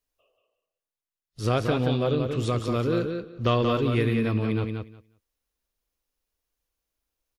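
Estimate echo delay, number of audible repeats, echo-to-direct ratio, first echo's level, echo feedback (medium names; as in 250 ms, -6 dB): 180 ms, 2, -5.5 dB, -5.5 dB, 15%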